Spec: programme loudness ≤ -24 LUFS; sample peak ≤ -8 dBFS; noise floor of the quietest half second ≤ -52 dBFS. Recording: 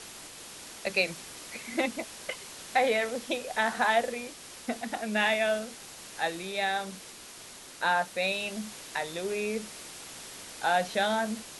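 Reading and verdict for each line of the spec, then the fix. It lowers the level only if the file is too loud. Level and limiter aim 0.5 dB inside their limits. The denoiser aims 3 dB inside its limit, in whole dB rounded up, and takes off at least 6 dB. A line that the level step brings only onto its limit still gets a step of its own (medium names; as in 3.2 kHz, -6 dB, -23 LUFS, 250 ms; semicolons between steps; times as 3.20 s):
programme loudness -30.0 LUFS: pass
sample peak -11.5 dBFS: pass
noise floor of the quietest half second -47 dBFS: fail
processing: noise reduction 8 dB, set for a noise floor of -47 dBFS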